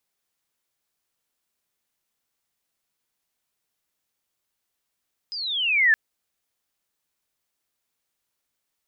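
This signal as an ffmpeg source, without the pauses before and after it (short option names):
-f lavfi -i "aevalsrc='pow(10,(-29.5+16.5*t/0.62)/20)*sin(2*PI*5100*0.62/log(1700/5100)*(exp(log(1700/5100)*t/0.62)-1))':d=0.62:s=44100"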